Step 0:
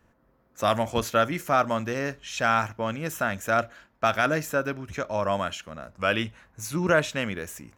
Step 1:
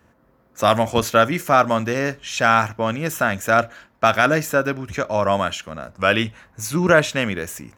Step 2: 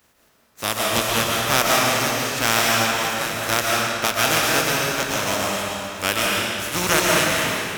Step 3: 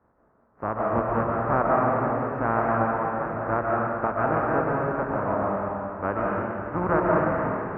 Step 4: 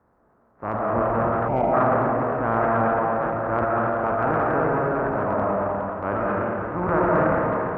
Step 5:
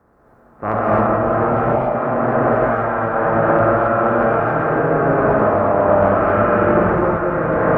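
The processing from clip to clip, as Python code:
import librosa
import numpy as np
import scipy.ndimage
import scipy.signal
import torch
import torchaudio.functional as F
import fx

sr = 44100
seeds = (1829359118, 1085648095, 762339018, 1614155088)

y1 = scipy.signal.sosfilt(scipy.signal.butter(2, 54.0, 'highpass', fs=sr, output='sos'), x)
y1 = y1 * librosa.db_to_amplitude(7.0)
y2 = fx.spec_flatten(y1, sr, power=0.34)
y2 = fx.tremolo_random(y2, sr, seeds[0], hz=3.5, depth_pct=55)
y2 = fx.rev_freeverb(y2, sr, rt60_s=2.5, hf_ratio=0.85, predelay_ms=95, drr_db=-4.0)
y2 = y2 * librosa.db_to_amplitude(-3.5)
y3 = scipy.signal.sosfilt(scipy.signal.cheby2(4, 50, 3300.0, 'lowpass', fs=sr, output='sos'), y2)
y4 = fx.echo_banded(y3, sr, ms=114, feedback_pct=78, hz=630.0, wet_db=-9.0)
y4 = fx.transient(y4, sr, attack_db=-4, sustain_db=9)
y4 = fx.spec_box(y4, sr, start_s=1.48, length_s=0.25, low_hz=970.0, high_hz=2000.0, gain_db=-15)
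y4 = y4 * librosa.db_to_amplitude(1.5)
y5 = fx.notch(y4, sr, hz=940.0, q=11.0)
y5 = fx.over_compress(y5, sr, threshold_db=-26.0, ratio=-1.0)
y5 = fx.rev_gated(y5, sr, seeds[1], gate_ms=300, shape='rising', drr_db=-5.0)
y5 = y5 * librosa.db_to_amplitude(4.0)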